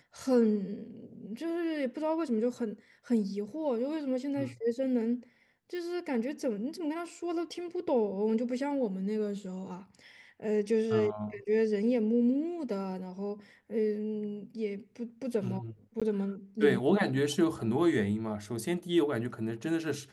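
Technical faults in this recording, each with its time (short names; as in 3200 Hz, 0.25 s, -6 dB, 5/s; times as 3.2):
5.75 pop
16–16.02 gap 16 ms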